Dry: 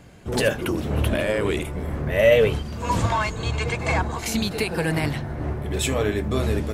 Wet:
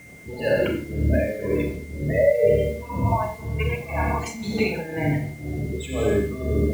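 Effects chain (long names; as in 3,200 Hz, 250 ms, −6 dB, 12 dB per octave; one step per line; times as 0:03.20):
0:02.91–0:03.50: flat-topped bell 3,100 Hz −12 dB 2.9 octaves
gate on every frequency bin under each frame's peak −15 dB strong
high-pass filter 93 Hz 6 dB per octave
delay with a band-pass on its return 69 ms, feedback 38%, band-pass 470 Hz, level −5 dB
four-comb reverb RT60 0.83 s, combs from 27 ms, DRR 0.5 dB
shaped tremolo triangle 2 Hz, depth 85%
steady tone 2,100 Hz −44 dBFS
bit reduction 8 bits
one half of a high-frequency compander decoder only
level +2 dB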